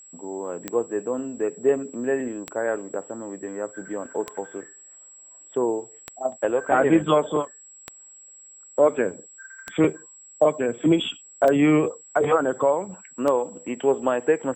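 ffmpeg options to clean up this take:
-af "adeclick=t=4,bandreject=f=7.7k:w=30"

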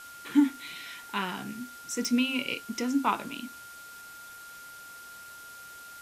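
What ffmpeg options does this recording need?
-af "adeclick=t=4,bandreject=f=1.4k:w=30,afwtdn=0.0032"

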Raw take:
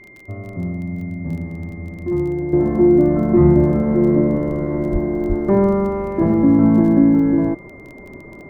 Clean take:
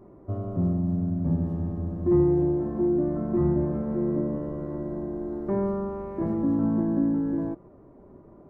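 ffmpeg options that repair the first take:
-filter_complex "[0:a]adeclick=t=4,bandreject=f=2.1k:w=30,asplit=3[a][b][c];[a]afade=t=out:st=4.92:d=0.02[d];[b]highpass=f=140:w=0.5412,highpass=f=140:w=1.3066,afade=t=in:st=4.92:d=0.02,afade=t=out:st=5.04:d=0.02[e];[c]afade=t=in:st=5.04:d=0.02[f];[d][e][f]amix=inputs=3:normalize=0,asplit=3[g][h][i];[g]afade=t=out:st=5.28:d=0.02[j];[h]highpass=f=140:w=0.5412,highpass=f=140:w=1.3066,afade=t=in:st=5.28:d=0.02,afade=t=out:st=5.4:d=0.02[k];[i]afade=t=in:st=5.4:d=0.02[l];[j][k][l]amix=inputs=3:normalize=0,asetnsamples=n=441:p=0,asendcmd='2.53 volume volume -11.5dB',volume=0dB"

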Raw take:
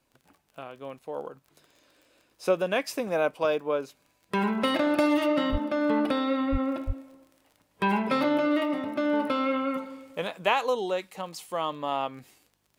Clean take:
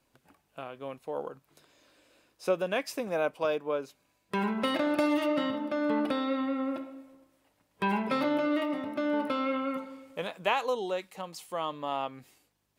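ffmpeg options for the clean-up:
-filter_complex "[0:a]adeclick=t=4,asplit=3[a][b][c];[a]afade=t=out:st=5.51:d=0.02[d];[b]highpass=f=140:w=0.5412,highpass=f=140:w=1.3066,afade=t=in:st=5.51:d=0.02,afade=t=out:st=5.63:d=0.02[e];[c]afade=t=in:st=5.63:d=0.02[f];[d][e][f]amix=inputs=3:normalize=0,asplit=3[g][h][i];[g]afade=t=out:st=6.51:d=0.02[j];[h]highpass=f=140:w=0.5412,highpass=f=140:w=1.3066,afade=t=in:st=6.51:d=0.02,afade=t=out:st=6.63:d=0.02[k];[i]afade=t=in:st=6.63:d=0.02[l];[j][k][l]amix=inputs=3:normalize=0,asplit=3[m][n][o];[m]afade=t=out:st=6.86:d=0.02[p];[n]highpass=f=140:w=0.5412,highpass=f=140:w=1.3066,afade=t=in:st=6.86:d=0.02,afade=t=out:st=6.98:d=0.02[q];[o]afade=t=in:st=6.98:d=0.02[r];[p][q][r]amix=inputs=3:normalize=0,asetnsamples=n=441:p=0,asendcmd='2.31 volume volume -3.5dB',volume=0dB"

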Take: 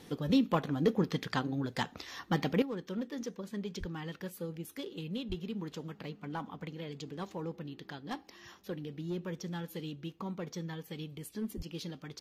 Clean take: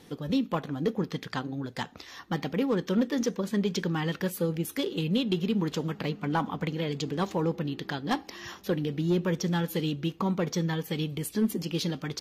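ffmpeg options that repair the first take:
-filter_complex "[0:a]asplit=3[a][b][c];[a]afade=t=out:st=3.79:d=0.02[d];[b]highpass=f=140:w=0.5412,highpass=f=140:w=1.3066,afade=t=in:st=3.79:d=0.02,afade=t=out:st=3.91:d=0.02[e];[c]afade=t=in:st=3.91:d=0.02[f];[d][e][f]amix=inputs=3:normalize=0,asplit=3[g][h][i];[g]afade=t=out:st=5.28:d=0.02[j];[h]highpass=f=140:w=0.5412,highpass=f=140:w=1.3066,afade=t=in:st=5.28:d=0.02,afade=t=out:st=5.4:d=0.02[k];[i]afade=t=in:st=5.4:d=0.02[l];[j][k][l]amix=inputs=3:normalize=0,asplit=3[m][n][o];[m]afade=t=out:st=11.56:d=0.02[p];[n]highpass=f=140:w=0.5412,highpass=f=140:w=1.3066,afade=t=in:st=11.56:d=0.02,afade=t=out:st=11.68:d=0.02[q];[o]afade=t=in:st=11.68:d=0.02[r];[p][q][r]amix=inputs=3:normalize=0,asetnsamples=n=441:p=0,asendcmd='2.62 volume volume 11.5dB',volume=0dB"

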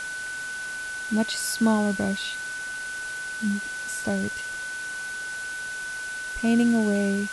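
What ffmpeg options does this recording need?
-af "adeclick=t=4,bandreject=f=1.5k:w=30,afftdn=nr=30:nf=-34"

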